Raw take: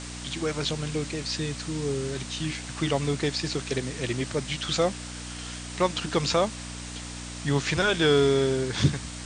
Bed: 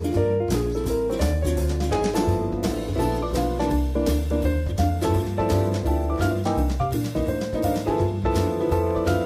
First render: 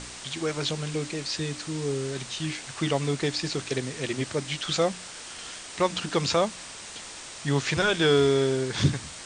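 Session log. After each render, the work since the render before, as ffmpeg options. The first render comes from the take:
-af "bandreject=f=60:t=h:w=4,bandreject=f=120:t=h:w=4,bandreject=f=180:t=h:w=4,bandreject=f=240:t=h:w=4,bandreject=f=300:t=h:w=4"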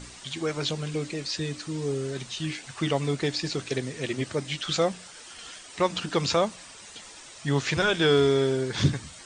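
-af "afftdn=nr=9:nf=-42"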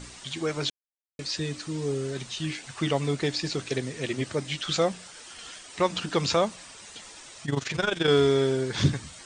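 -filter_complex "[0:a]asettb=1/sr,asplit=3[a][b][c];[a]atrim=end=7.454[d];[b]atrim=start=7.45:end=8.08,asetpts=PTS-STARTPTS,afade=t=in:d=0.004:c=qsin,afade=t=out:st=0.626:d=0.004:c=qsin,tremolo=f=23:d=0.788[e];[c]atrim=start=8.076[f];[d][e]acrossfade=d=0.004:c1=hsin:c2=qsin[g];[g][f]acrossfade=d=0.004:c1=qsin:c2=hsin,asplit=3[h][i][j];[h]atrim=end=0.7,asetpts=PTS-STARTPTS,afade=t=out:st=0.696:d=0.004:c=hsin[k];[i]atrim=start=0.7:end=1.19,asetpts=PTS-STARTPTS,volume=0[l];[j]atrim=start=1.19,asetpts=PTS-STARTPTS,afade=t=in:d=0.004:c=hsin[m];[k][l][m]concat=n=3:v=0:a=1"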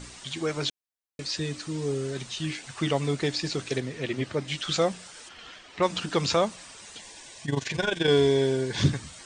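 -filter_complex "[0:a]asettb=1/sr,asplit=3[a][b][c];[a]atrim=end=3.804[d];[b]atrim=start=3.8:end=4.48,asetpts=PTS-STARTPTS,afade=t=in:d=0.004:c=qsin,afade=t=out:st=0.676:d=0.004:c=qsin,acrossover=split=4700[e][f];[f]acompressor=threshold=-57dB:ratio=4:attack=1:release=60[g];[e][g]amix=inputs=2:normalize=0[h];[c]atrim=start=4.476[i];[d][h]acrossfade=d=0.004:c1=hsin:c2=qsin[j];[j][i]acrossfade=d=0.004:c1=qsin:c2=hsin,asplit=3[k][l][m];[k]afade=t=out:st=5.28:d=0.02[n];[l]lowpass=3.6k,afade=t=in:st=5.28:d=0.02,afade=t=out:st=5.81:d=0.02[o];[m]afade=t=in:st=5.81:d=0.02[p];[n][o][p]amix=inputs=3:normalize=0,asettb=1/sr,asplit=3[q][r][s];[q]atrim=end=6.984[t];[r]atrim=start=6.98:end=8.82,asetpts=PTS-STARTPTS,afade=t=in:d=0.004:c=qsin,afade=t=out:st=1.836:d=0.004:c=qsin,asuperstop=centerf=1300:order=12:qfactor=5.4[u];[s]atrim=start=8.816[v];[t][u]acrossfade=d=0.004:c1=hsin:c2=qsin[w];[w][v]acrossfade=d=0.004:c1=qsin:c2=hsin"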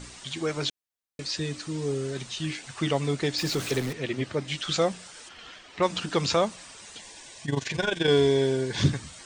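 -filter_complex "[0:a]asettb=1/sr,asplit=3[a][b][c];[a]atrim=end=3.384[d];[b]atrim=start=3.38:end=3.93,asetpts=PTS-STARTPTS,afade=t=in:d=0.004:c=qsin,afade=t=out:st=0.546:d=0.004:c=qsin,aeval=exprs='val(0)+0.5*0.0251*sgn(val(0))':c=same[e];[c]atrim=start=3.926[f];[d][e]acrossfade=d=0.004:c1=hsin:c2=qsin[g];[g][f]acrossfade=d=0.004:c1=qsin:c2=hsin"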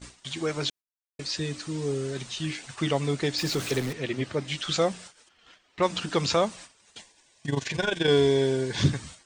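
-af "agate=range=-16dB:threshold=-43dB:ratio=16:detection=peak"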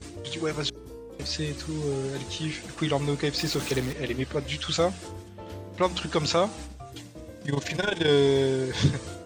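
-filter_complex "[1:a]volume=-19dB[a];[0:a][a]amix=inputs=2:normalize=0"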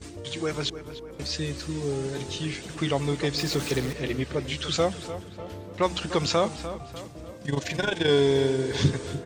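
-filter_complex "[0:a]asplit=2[a][b];[b]adelay=298,lowpass=f=3.1k:p=1,volume=-12dB,asplit=2[c][d];[d]adelay=298,lowpass=f=3.1k:p=1,volume=0.5,asplit=2[e][f];[f]adelay=298,lowpass=f=3.1k:p=1,volume=0.5,asplit=2[g][h];[h]adelay=298,lowpass=f=3.1k:p=1,volume=0.5,asplit=2[i][j];[j]adelay=298,lowpass=f=3.1k:p=1,volume=0.5[k];[a][c][e][g][i][k]amix=inputs=6:normalize=0"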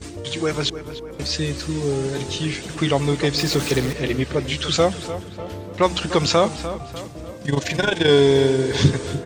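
-af "volume=6.5dB"

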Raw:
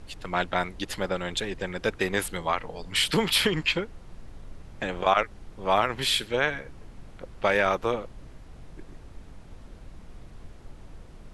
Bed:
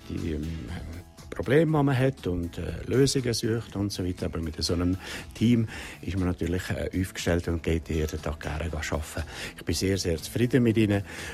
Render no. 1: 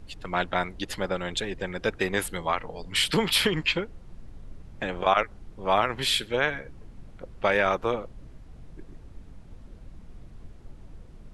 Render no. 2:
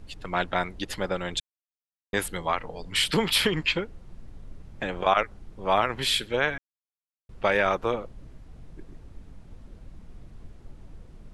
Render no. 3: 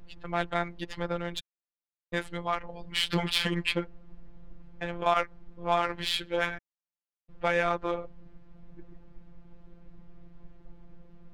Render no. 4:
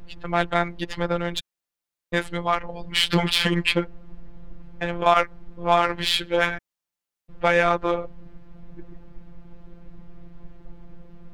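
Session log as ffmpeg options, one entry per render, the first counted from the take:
-af "afftdn=nr=6:nf=-47"
-filter_complex "[0:a]asplit=5[a][b][c][d][e];[a]atrim=end=1.4,asetpts=PTS-STARTPTS,afade=t=out:st=1.396:d=0.004:c=hsin[f];[b]atrim=start=1.4:end=2.13,asetpts=PTS-STARTPTS,volume=0[g];[c]atrim=start=2.13:end=6.58,asetpts=PTS-STARTPTS,afade=t=in:d=0.004:c=hsin,afade=t=out:st=4.446:d=0.004:c=hsin[h];[d]atrim=start=6.58:end=7.29,asetpts=PTS-STARTPTS,volume=0[i];[e]atrim=start=7.29,asetpts=PTS-STARTPTS,afade=t=in:d=0.004:c=hsin[j];[f][g][h][i][j]concat=n=5:v=0:a=1"
-af "adynamicsmooth=sensitivity=2:basefreq=3.4k,afftfilt=real='hypot(re,im)*cos(PI*b)':imag='0':win_size=1024:overlap=0.75"
-af "volume=7.5dB,alimiter=limit=-2dB:level=0:latency=1"

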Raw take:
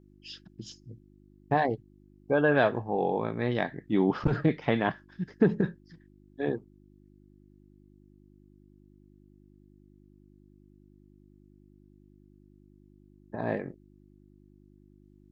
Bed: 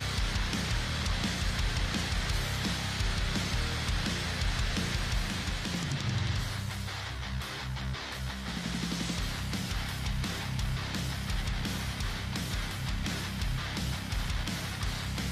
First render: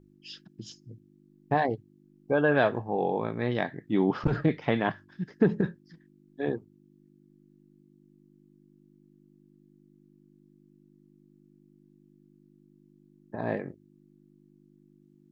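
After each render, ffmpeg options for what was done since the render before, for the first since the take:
-af "bandreject=f=50:t=h:w=4,bandreject=f=100:t=h:w=4"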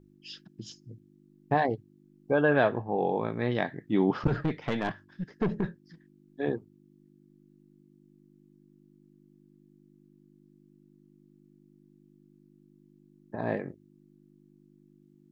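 -filter_complex "[0:a]asettb=1/sr,asplit=3[a][b][c];[a]atrim=end=2.534[d];[b]atrim=start=2.53:end=3.04,asetpts=PTS-STARTPTS,afade=t=in:d=0.004:c=qsin,afade=t=out:st=0.506:d=0.004:c=qsin,highshelf=f=4.3k:g=-6.5[e];[c]atrim=start=3.036[f];[d][e]acrossfade=d=0.004:c1=hsin:c2=qsin[g];[g][f]acrossfade=d=0.004:c1=qsin:c2=hsin,asettb=1/sr,asplit=3[h][i][j];[h]atrim=end=4.334[k];[i]atrim=start=4.33:end=5.83,asetpts=PTS-STARTPTS,afade=t=in:d=0.004:c=qsin,afade=t=out:st=1.496:d=0.004:c=qsin,aeval=exprs='(tanh(12.6*val(0)+0.4)-tanh(0.4))/12.6':c=same[l];[j]atrim=start=5.826[m];[k][l]acrossfade=d=0.004:c1=hsin:c2=qsin[n];[n][m]acrossfade=d=0.004:c1=qsin:c2=hsin"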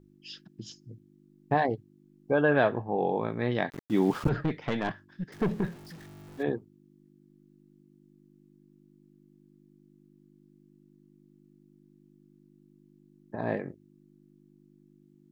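-filter_complex "[0:a]asettb=1/sr,asplit=3[a][b][c];[a]atrim=end=3.704[d];[b]atrim=start=3.7:end=4.29,asetpts=PTS-STARTPTS,afade=t=in:d=0.004:c=qsin,afade=t=out:st=0.586:d=0.004:c=qsin,aeval=exprs='val(0)*gte(abs(val(0)),0.00944)':c=same[e];[c]atrim=start=4.286[f];[d][e]acrossfade=d=0.004:c1=hsin:c2=qsin[g];[g][f]acrossfade=d=0.004:c1=qsin:c2=hsin,asettb=1/sr,asplit=3[h][i][j];[h]atrim=end=5.324[k];[i]atrim=start=5.32:end=6.43,asetpts=PTS-STARTPTS,afade=t=in:d=0.004:c=qsin,afade=t=out:st=1.106:d=0.004:c=qsin,aeval=exprs='val(0)+0.5*0.00631*sgn(val(0))':c=same[l];[j]atrim=start=6.426[m];[k][l]acrossfade=d=0.004:c1=hsin:c2=qsin[n];[n][m]acrossfade=d=0.004:c1=qsin:c2=hsin"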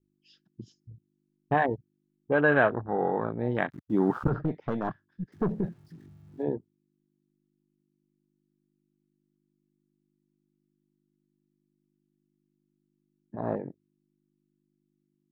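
-af "afwtdn=0.0224,adynamicequalizer=threshold=0.00708:dfrequency=1400:dqfactor=1.8:tfrequency=1400:tqfactor=1.8:attack=5:release=100:ratio=0.375:range=3:mode=boostabove:tftype=bell"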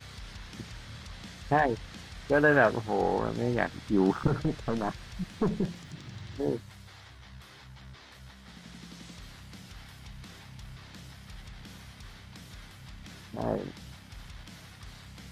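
-filter_complex "[1:a]volume=-13.5dB[a];[0:a][a]amix=inputs=2:normalize=0"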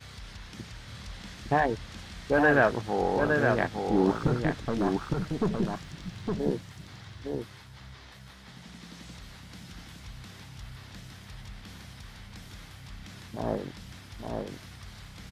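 -af "aecho=1:1:861:0.631"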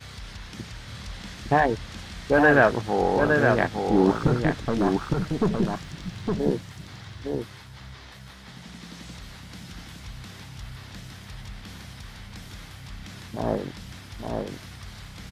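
-af "volume=4.5dB"

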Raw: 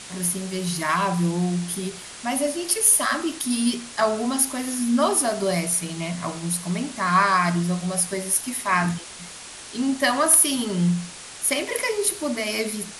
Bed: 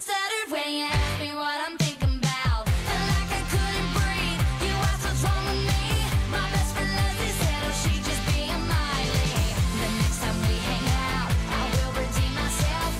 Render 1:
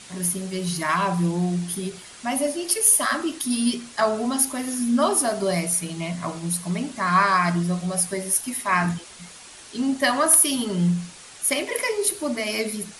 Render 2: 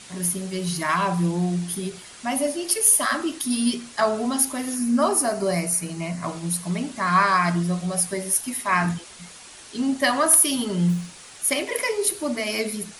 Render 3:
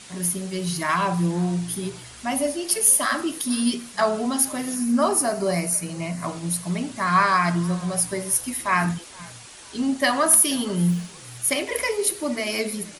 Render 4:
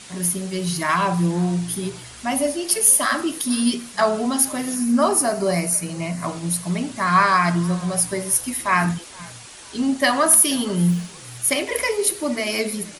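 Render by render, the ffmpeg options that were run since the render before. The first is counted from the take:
-af "afftdn=nr=6:nf=-40"
-filter_complex "[0:a]asettb=1/sr,asplit=3[a][b][c];[a]atrim=end=4.764[d];[b]atrim=start=4.76:end=6.24,asetpts=PTS-STARTPTS,afade=t=in:d=0.004:c=qsin,afade=t=out:st=1.476:d=0.004:c=qsin,equalizer=f=3.4k:t=o:w=0.31:g=-11.5[e];[c]atrim=start=6.236[f];[d][e]acrossfade=d=0.004:c1=hsin:c2=qsin[g];[g][f]acrossfade=d=0.004:c1=qsin:c2=hsin,asplit=3[h][i][j];[h]afade=t=out:st=10.88:d=0.02[k];[i]acrusher=bits=7:mode=log:mix=0:aa=0.000001,afade=t=in:st=10.88:d=0.02,afade=t=out:st=11.43:d=0.02[l];[j]afade=t=in:st=11.43:d=0.02[m];[k][l][m]amix=inputs=3:normalize=0"
-filter_complex "[0:a]asplit=3[a][b][c];[b]adelay=473,afreqshift=-54,volume=-23.5dB[d];[c]adelay=946,afreqshift=-108,volume=-32.4dB[e];[a][d][e]amix=inputs=3:normalize=0"
-af "volume=2.5dB,alimiter=limit=-2dB:level=0:latency=1"

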